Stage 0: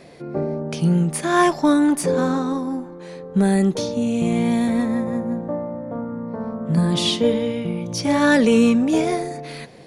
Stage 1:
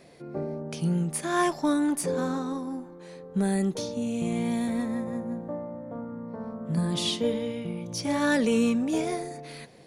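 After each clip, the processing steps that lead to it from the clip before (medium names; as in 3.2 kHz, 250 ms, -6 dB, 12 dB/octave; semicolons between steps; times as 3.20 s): treble shelf 7.8 kHz +7 dB; trim -8.5 dB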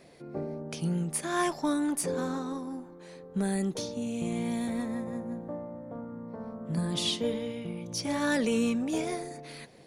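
harmonic-percussive split harmonic -4 dB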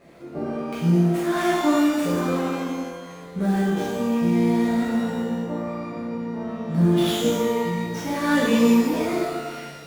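median filter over 9 samples; pitch-shifted reverb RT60 1.1 s, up +12 st, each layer -8 dB, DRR -7.5 dB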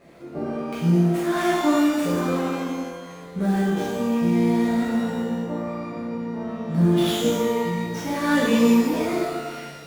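no audible change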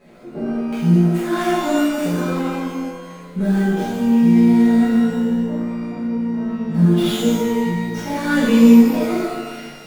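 reverberation RT60 0.20 s, pre-delay 4 ms, DRR -1 dB; trim -1 dB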